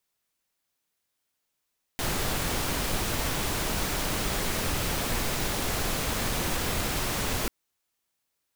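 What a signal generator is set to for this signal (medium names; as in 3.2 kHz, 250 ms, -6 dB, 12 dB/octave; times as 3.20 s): noise pink, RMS -28.5 dBFS 5.49 s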